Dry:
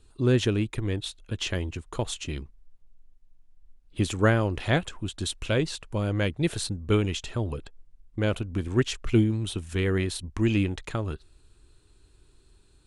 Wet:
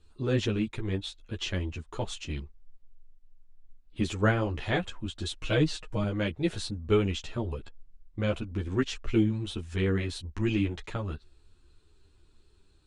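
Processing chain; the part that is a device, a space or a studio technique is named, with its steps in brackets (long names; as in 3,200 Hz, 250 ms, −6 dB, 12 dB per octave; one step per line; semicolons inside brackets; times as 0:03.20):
string-machine ensemble chorus (string-ensemble chorus; low-pass filter 6,500 Hz 12 dB per octave)
0:05.41–0:06.04: comb filter 6.4 ms, depth 91%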